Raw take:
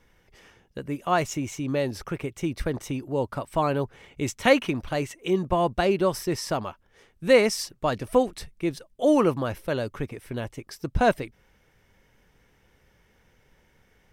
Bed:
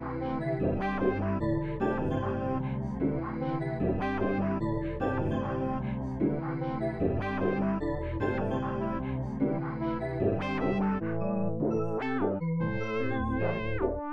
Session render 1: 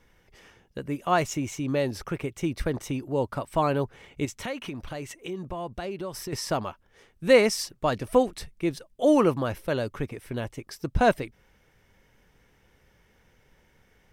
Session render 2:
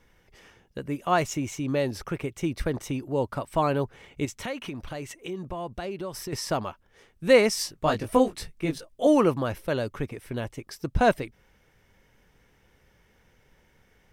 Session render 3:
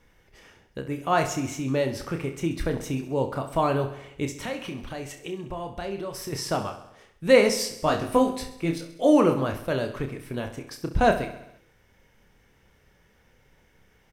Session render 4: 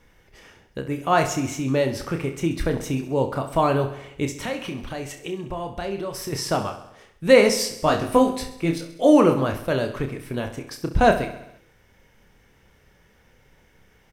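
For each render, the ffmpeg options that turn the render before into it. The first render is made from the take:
-filter_complex "[0:a]asettb=1/sr,asplit=3[a][b][c];[a]atrim=end=4.254[d];[b]atrim=start=4.25:end=6.33,asetpts=PTS-STARTPTS,afade=t=in:d=0.004:c=qsin,afade=t=out:st=2.076:d=0.004:c=qsin,acompressor=threshold=-34dB:ratio=3:attack=3.2:release=140:knee=1:detection=peak[e];[c]atrim=start=6.326[f];[d][e]acrossfade=d=0.004:c1=hsin:c2=qsin[g];[g][f]acrossfade=d=0.004:c1=qsin:c2=hsin"
-filter_complex "[0:a]asettb=1/sr,asplit=3[a][b][c];[a]atrim=end=7.554[d];[b]atrim=start=7.55:end=9.07,asetpts=PTS-STARTPTS,afade=t=in:d=0.004:c=qsin,afade=t=out:st=1.516:d=0.004:c=qsin,asplit=2[e][f];[f]adelay=19,volume=-3dB[g];[e][g]amix=inputs=2:normalize=0,atrim=end_sample=67032[h];[c]atrim=start=9.066[i];[d][h]acrossfade=d=0.004:c1=hsin:c2=qsin[j];[j][i]acrossfade=d=0.004:c1=qsin:c2=hsin"
-filter_complex "[0:a]asplit=2[a][b];[b]adelay=30,volume=-7.5dB[c];[a][c]amix=inputs=2:normalize=0,aecho=1:1:66|132|198|264|330|396|462:0.251|0.148|0.0874|0.0516|0.0304|0.018|0.0106"
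-af "volume=3.5dB,alimiter=limit=-2dB:level=0:latency=1"

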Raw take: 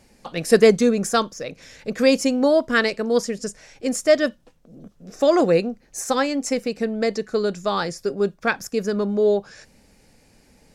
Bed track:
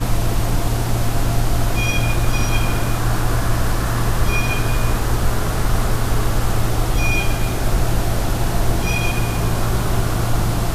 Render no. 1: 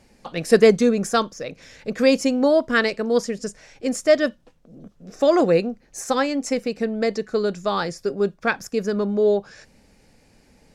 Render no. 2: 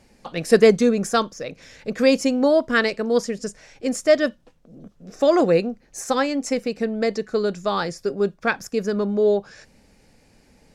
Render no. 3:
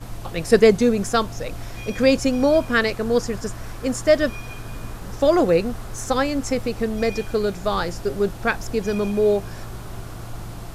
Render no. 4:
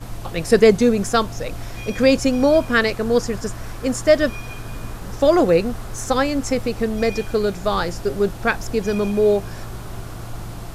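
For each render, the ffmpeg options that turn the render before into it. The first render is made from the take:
-af "highshelf=f=7.6k:g=-6.5"
-af anull
-filter_complex "[1:a]volume=-15.5dB[a];[0:a][a]amix=inputs=2:normalize=0"
-af "volume=2dB,alimiter=limit=-3dB:level=0:latency=1"

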